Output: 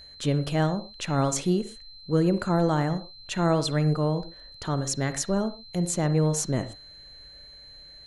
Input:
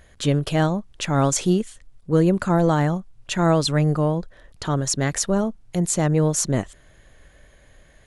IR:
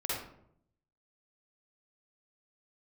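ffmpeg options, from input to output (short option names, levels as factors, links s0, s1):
-filter_complex "[0:a]aeval=exprs='val(0)+0.0112*sin(2*PI*4100*n/s)':c=same,asplit=2[s0][s1];[1:a]atrim=start_sample=2205,atrim=end_sample=6174,lowpass=2900[s2];[s1][s2]afir=irnorm=-1:irlink=0,volume=0.188[s3];[s0][s3]amix=inputs=2:normalize=0,volume=0.501"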